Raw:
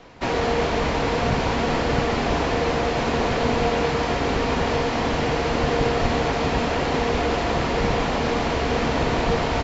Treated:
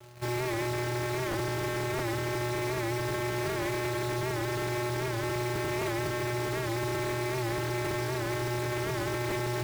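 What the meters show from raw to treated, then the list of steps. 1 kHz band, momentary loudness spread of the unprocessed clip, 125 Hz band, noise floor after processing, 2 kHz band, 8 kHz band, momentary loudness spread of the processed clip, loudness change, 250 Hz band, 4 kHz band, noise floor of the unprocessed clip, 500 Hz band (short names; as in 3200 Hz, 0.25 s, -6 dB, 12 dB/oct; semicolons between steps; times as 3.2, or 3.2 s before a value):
-11.5 dB, 1 LU, -5.5 dB, -32 dBFS, -8.0 dB, n/a, 1 LU, -9.0 dB, -9.0 dB, -10.0 dB, -24 dBFS, -9.5 dB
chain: bell 210 Hz -3.5 dB 2.4 oct; vocoder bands 4, square 121 Hz; wavefolder -25.5 dBFS; companded quantiser 4-bit; record warp 78 rpm, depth 100 cents; gain -1.5 dB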